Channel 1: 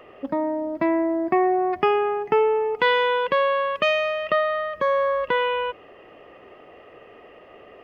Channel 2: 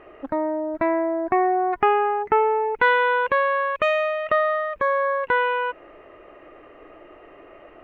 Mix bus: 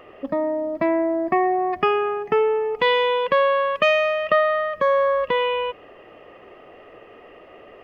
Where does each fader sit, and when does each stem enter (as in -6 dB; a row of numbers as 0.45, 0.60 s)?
+1.0, -8.5 dB; 0.00, 0.00 s